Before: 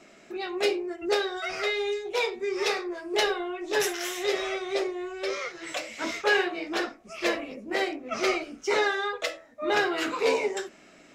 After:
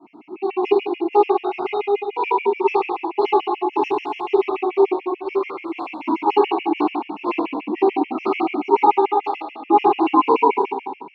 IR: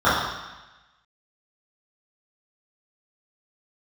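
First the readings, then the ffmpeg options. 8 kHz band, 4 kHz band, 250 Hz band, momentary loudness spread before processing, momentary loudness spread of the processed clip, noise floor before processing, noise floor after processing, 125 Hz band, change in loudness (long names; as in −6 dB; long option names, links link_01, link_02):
below −25 dB, −5.5 dB, +11.5 dB, 9 LU, 9 LU, −54 dBFS, −44 dBFS, can't be measured, +8.0 dB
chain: -filter_complex "[0:a]asplit=3[link_01][link_02][link_03];[link_01]bandpass=frequency=300:width_type=q:width=8,volume=0dB[link_04];[link_02]bandpass=frequency=870:width_type=q:width=8,volume=-6dB[link_05];[link_03]bandpass=frequency=2240:width_type=q:width=8,volume=-9dB[link_06];[link_04][link_05][link_06]amix=inputs=3:normalize=0[link_07];[1:a]atrim=start_sample=2205,asetrate=33957,aresample=44100[link_08];[link_07][link_08]afir=irnorm=-1:irlink=0,afftfilt=real='re*gt(sin(2*PI*6.9*pts/sr)*(1-2*mod(floor(b*sr/1024/1700),2)),0)':imag='im*gt(sin(2*PI*6.9*pts/sr)*(1-2*mod(floor(b*sr/1024/1700),2)),0)':win_size=1024:overlap=0.75,volume=1dB"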